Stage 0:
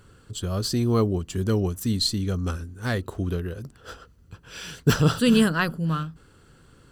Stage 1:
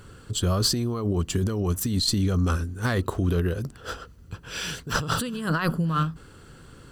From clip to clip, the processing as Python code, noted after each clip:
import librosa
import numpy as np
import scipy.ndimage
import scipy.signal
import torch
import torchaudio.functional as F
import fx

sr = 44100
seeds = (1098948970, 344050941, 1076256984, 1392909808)

y = fx.dynamic_eq(x, sr, hz=1100.0, q=2.6, threshold_db=-44.0, ratio=4.0, max_db=5)
y = fx.over_compress(y, sr, threshold_db=-27.0, ratio=-1.0)
y = F.gain(torch.from_numpy(y), 2.5).numpy()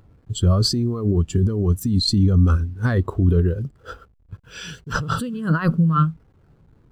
y = fx.delta_hold(x, sr, step_db=-43.5)
y = fx.spectral_expand(y, sr, expansion=1.5)
y = F.gain(torch.from_numpy(y), 2.5).numpy()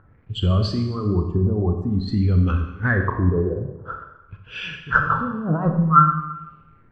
y = fx.filter_lfo_lowpass(x, sr, shape='sine', hz=0.5, low_hz=730.0, high_hz=2800.0, q=4.6)
y = fx.rev_schroeder(y, sr, rt60_s=1.0, comb_ms=29, drr_db=4.5)
y = F.gain(torch.from_numpy(y), -3.0).numpy()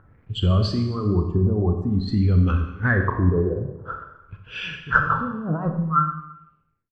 y = fx.fade_out_tail(x, sr, length_s=2.02)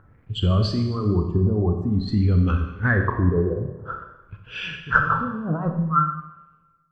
y = fx.rev_plate(x, sr, seeds[0], rt60_s=1.4, hf_ratio=1.0, predelay_ms=0, drr_db=16.0)